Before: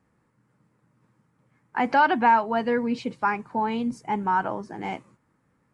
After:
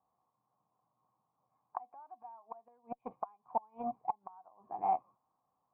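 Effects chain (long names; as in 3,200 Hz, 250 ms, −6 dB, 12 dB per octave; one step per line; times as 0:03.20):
gate with flip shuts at −17 dBFS, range −28 dB
harmonic generator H 7 −23 dB, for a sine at −16.5 dBFS
formant resonators in series a
level +10 dB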